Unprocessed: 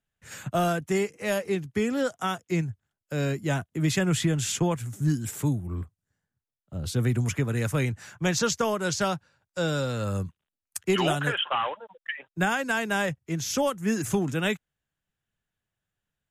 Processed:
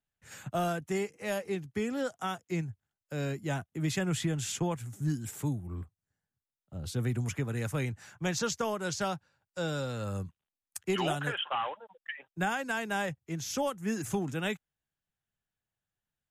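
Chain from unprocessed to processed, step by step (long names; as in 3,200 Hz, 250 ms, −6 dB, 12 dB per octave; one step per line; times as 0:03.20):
parametric band 800 Hz +4 dB 0.22 octaves
level −6.5 dB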